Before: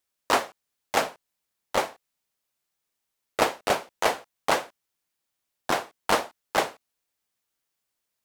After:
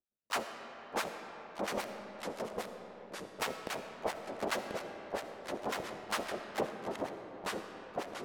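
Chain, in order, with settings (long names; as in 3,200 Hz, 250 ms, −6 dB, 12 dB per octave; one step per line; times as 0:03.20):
adaptive Wiener filter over 41 samples
volume swells 111 ms
delay with pitch and tempo change per echo 588 ms, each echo −2 semitones, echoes 3
0:01.80–0:03.43: high-shelf EQ 6,300 Hz +6 dB
two-band tremolo in antiphase 7.4 Hz, depth 100%, crossover 1,000 Hz
parametric band 210 Hz +6.5 dB 0.31 octaves
comb and all-pass reverb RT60 4.6 s, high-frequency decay 0.5×, pre-delay 25 ms, DRR 6.5 dB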